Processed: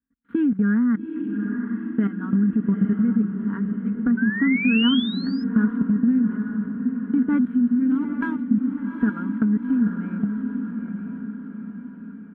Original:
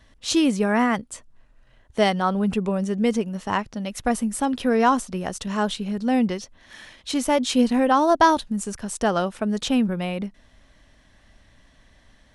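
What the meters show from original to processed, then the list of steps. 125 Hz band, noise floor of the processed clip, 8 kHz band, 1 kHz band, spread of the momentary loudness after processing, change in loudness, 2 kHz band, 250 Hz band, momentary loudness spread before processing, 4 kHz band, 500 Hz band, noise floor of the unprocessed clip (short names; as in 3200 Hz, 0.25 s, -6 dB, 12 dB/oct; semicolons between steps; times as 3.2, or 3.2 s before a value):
+3.5 dB, -39 dBFS, under -40 dB, -17.0 dB, 11 LU, 0.0 dB, -0.5 dB, +4.0 dB, 12 LU, -1.0 dB, -14.0 dB, -57 dBFS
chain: switching dead time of 0.08 ms; EQ curve 150 Hz 0 dB, 250 Hz +14 dB, 690 Hz -24 dB, 1500 Hz +5 dB, 2700 Hz -28 dB; expander -38 dBFS; level quantiser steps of 18 dB; comb 4.3 ms, depth 54%; compressor, threshold -20 dBFS, peak gain reduction 7 dB; spectral gain 7.54–8.75, 260–2100 Hz -9 dB; diffused feedback echo 0.842 s, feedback 53%, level -6 dB; painted sound rise, 4.17–5.44, 1500–5200 Hz -34 dBFS; HPF 64 Hz; resonant high shelf 3900 Hz -10 dB, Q 3; gain +2.5 dB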